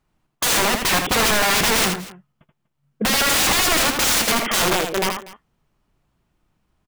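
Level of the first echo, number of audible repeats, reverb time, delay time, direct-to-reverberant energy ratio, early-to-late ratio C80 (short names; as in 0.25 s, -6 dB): -6.0 dB, 2, none, 80 ms, none, none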